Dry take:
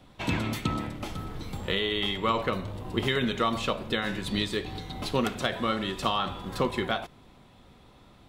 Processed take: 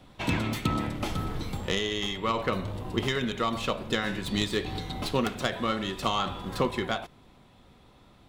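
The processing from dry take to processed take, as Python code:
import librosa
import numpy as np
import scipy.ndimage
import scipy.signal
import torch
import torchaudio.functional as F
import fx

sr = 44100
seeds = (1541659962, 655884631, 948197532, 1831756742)

y = fx.tracing_dist(x, sr, depth_ms=0.044)
y = fx.rider(y, sr, range_db=5, speed_s=0.5)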